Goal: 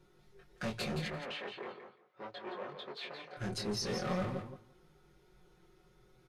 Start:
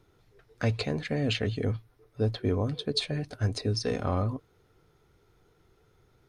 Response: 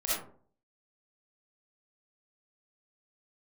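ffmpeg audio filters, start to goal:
-filter_complex "[0:a]aecho=1:1:5.5:0.97,asoftclip=type=hard:threshold=-29.5dB,flanger=delay=19.5:depth=4.9:speed=0.42,asettb=1/sr,asplit=3[a][b][c];[a]atrim=end=1.084[d];[b]atrim=start=1.08:end=3.37,asetpts=PTS-STARTPTS,afade=t=in:d=0.004:c=qsin,afade=t=out:st=2.286:d=0.004:c=qsin,highpass=550,lowpass=2.4k[e];[c]atrim=start=3.366[f];[d][e]acrossfade=d=0.004:c1=hsin:c2=qsin[g];[g][f]acrossfade=d=0.004:c1=qsin:c2=hsin,aecho=1:1:170|340:0.398|0.0597,volume=-1dB" -ar 32000 -c:a libvorbis -b:a 48k

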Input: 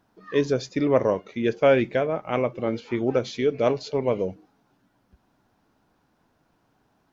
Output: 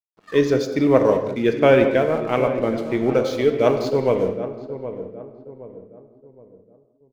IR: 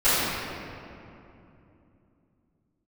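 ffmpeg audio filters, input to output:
-filter_complex "[0:a]aeval=exprs='sgn(val(0))*max(abs(val(0))-0.00473,0)':c=same,asplit=2[a][b];[b]adelay=769,lowpass=f=940:p=1,volume=-10.5dB,asplit=2[c][d];[d]adelay=769,lowpass=f=940:p=1,volume=0.42,asplit=2[e][f];[f]adelay=769,lowpass=f=940:p=1,volume=0.42,asplit=2[g][h];[h]adelay=769,lowpass=f=940:p=1,volume=0.42[i];[a][c][e][g][i]amix=inputs=5:normalize=0,asplit=2[j][k];[1:a]atrim=start_sample=2205,afade=t=out:st=0.27:d=0.01,atrim=end_sample=12348[l];[k][l]afir=irnorm=-1:irlink=0,volume=-24dB[m];[j][m]amix=inputs=2:normalize=0,volume=3.5dB"

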